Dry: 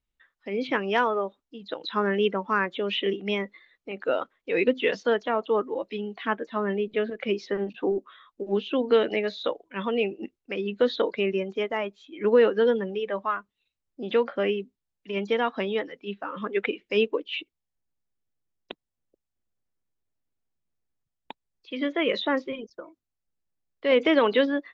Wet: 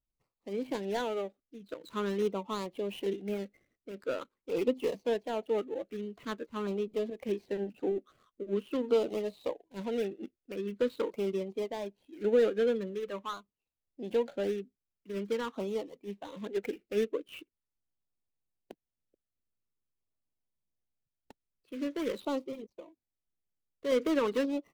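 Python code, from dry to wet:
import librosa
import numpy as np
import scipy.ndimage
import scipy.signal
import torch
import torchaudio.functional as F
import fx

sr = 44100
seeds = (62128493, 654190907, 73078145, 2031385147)

y = scipy.signal.medfilt(x, 25)
y = fx.filter_lfo_notch(y, sr, shape='saw_down', hz=0.45, low_hz=660.0, high_hz=1800.0, q=2.0)
y = y * librosa.db_to_amplitude(-5.5)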